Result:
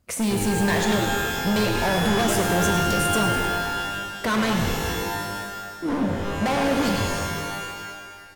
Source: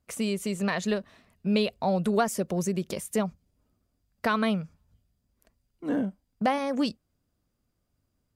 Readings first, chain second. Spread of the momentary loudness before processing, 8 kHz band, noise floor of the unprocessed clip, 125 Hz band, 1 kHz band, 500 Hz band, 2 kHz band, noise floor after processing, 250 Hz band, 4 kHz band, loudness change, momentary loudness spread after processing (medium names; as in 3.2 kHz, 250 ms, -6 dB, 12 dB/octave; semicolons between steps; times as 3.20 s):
7 LU, +11.0 dB, -77 dBFS, +9.0 dB, +8.0 dB, +5.0 dB, +11.0 dB, -39 dBFS, +5.0 dB, +11.0 dB, +5.5 dB, 10 LU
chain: frequency-shifting echo 103 ms, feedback 65%, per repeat -94 Hz, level -11 dB; overload inside the chain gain 30.5 dB; pitch-shifted reverb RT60 1.7 s, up +12 st, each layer -2 dB, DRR 4 dB; trim +8.5 dB